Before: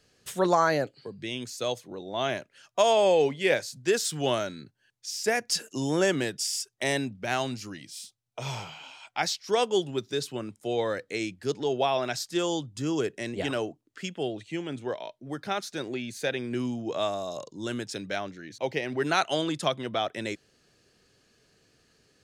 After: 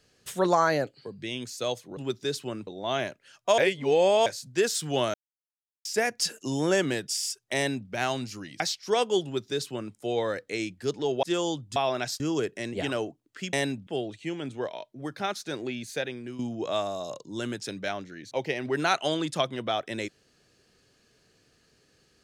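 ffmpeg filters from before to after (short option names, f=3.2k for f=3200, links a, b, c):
-filter_complex "[0:a]asplit=14[a][b][c][d][e][f][g][h][i][j][k][l][m][n];[a]atrim=end=1.972[o];[b]atrim=start=9.848:end=10.552[p];[c]atrim=start=1.968:end=2.882[q];[d]atrim=start=2.878:end=3.562,asetpts=PTS-STARTPTS,areverse[r];[e]atrim=start=3.558:end=4.44,asetpts=PTS-STARTPTS,afade=t=out:st=0.878:d=0.004:c=hsin[s];[f]atrim=start=4.44:end=5.15,asetpts=PTS-STARTPTS,volume=0[t];[g]atrim=start=5.15:end=7.902,asetpts=PTS-STARTPTS,afade=t=in:d=0.004:c=hsin[u];[h]atrim=start=9.208:end=11.842[v];[i]atrim=start=12.278:end=12.812[w];[j]atrim=start=11.838:end=12.282[x];[k]atrim=start=12.808:end=14.142[y];[l]atrim=start=6.858:end=7.202[z];[m]atrim=start=14.138:end=16.66,asetpts=PTS-STARTPTS,afade=t=out:st=1.992:d=0.53:silence=0.251189[aa];[n]atrim=start=16.66,asetpts=PTS-STARTPTS,afade=t=in:d=0.004:c=hsin:silence=0.251189[ab];[o][p]acrossfade=d=0.004:c1=hsin:c2=hsin[ac];[ac][q]acrossfade=d=0.004:c1=hsin:c2=hsin[ad];[ad][r]acrossfade=d=0.004:c1=hsin:c2=hsin[ae];[s][t][u]concat=n=3:v=0:a=1[af];[ae][af]acrossfade=d=0.004:c1=hsin:c2=hsin[ag];[ag][v]acrossfade=d=0.004:c1=hsin:c2=hsin[ah];[ah][w]acrossfade=d=0.004:c1=hsin:c2=hsin[ai];[ai][x]acrossfade=d=0.004:c1=hsin:c2=hsin[aj];[aj][y]acrossfade=d=0.004:c1=hsin:c2=hsin[ak];[ak][z]acrossfade=d=0.004:c1=hsin:c2=hsin[al];[aa][ab]concat=n=2:v=0:a=1[am];[al][am]acrossfade=d=0.004:c1=hsin:c2=hsin"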